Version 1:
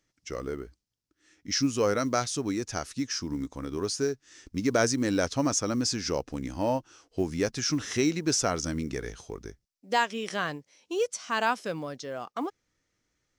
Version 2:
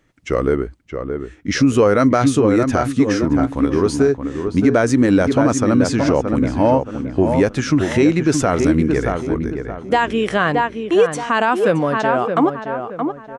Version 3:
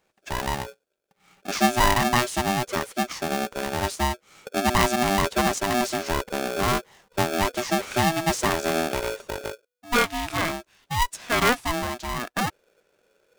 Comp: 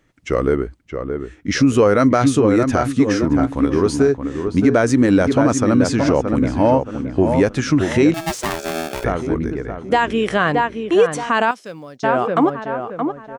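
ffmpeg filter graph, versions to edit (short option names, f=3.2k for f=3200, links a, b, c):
-filter_complex "[1:a]asplit=3[a][b][c];[a]atrim=end=8.142[d];[2:a]atrim=start=8.138:end=9.042[e];[b]atrim=start=9.038:end=11.512[f];[0:a]atrim=start=11.508:end=12.032[g];[c]atrim=start=12.028[h];[d][e]acrossfade=d=0.004:c1=hsin:c2=hsin[i];[i][f]acrossfade=d=0.004:c1=hsin:c2=hsin[j];[j][g]acrossfade=d=0.004:c1=hsin:c2=hsin[k];[k][h]acrossfade=d=0.004:c1=hsin:c2=hsin"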